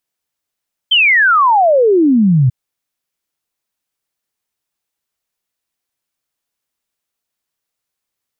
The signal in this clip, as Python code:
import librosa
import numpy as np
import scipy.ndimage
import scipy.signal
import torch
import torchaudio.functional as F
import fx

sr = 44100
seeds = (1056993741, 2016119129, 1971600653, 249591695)

y = fx.ess(sr, length_s=1.59, from_hz=3200.0, to_hz=120.0, level_db=-7.0)